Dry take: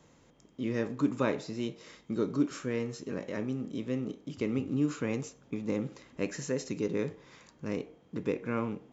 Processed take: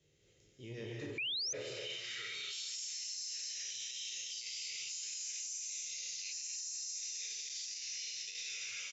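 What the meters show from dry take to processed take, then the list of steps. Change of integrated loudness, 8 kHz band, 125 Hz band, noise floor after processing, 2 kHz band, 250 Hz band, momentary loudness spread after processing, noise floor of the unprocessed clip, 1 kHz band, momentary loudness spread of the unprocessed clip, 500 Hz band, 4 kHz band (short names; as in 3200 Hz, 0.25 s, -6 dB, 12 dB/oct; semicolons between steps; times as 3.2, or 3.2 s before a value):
-5.5 dB, n/a, -17.0 dB, -69 dBFS, -2.5 dB, -25.0 dB, 3 LU, -62 dBFS, -21.0 dB, 8 LU, -17.5 dB, +11.5 dB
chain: spectral trails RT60 0.68 s; non-linear reverb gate 0.29 s rising, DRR -5 dB; band-pass sweep 300 Hz -> 5500 Hz, 1.35–2.8; EQ curve 120 Hz 0 dB, 280 Hz -23 dB, 410 Hz -11 dB, 1000 Hz -26 dB, 2000 Hz 0 dB, 3000 Hz +9 dB, 6700 Hz +13 dB; on a send: echo 0.249 s -8.5 dB; on the sum: painted sound rise, 1.18–1.53, 2300–6400 Hz -21 dBFS; bell 230 Hz -13 dB 1.4 oct; limiter -44.5 dBFS, peak gain reduction 29.5 dB; core saturation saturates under 190 Hz; gain +10.5 dB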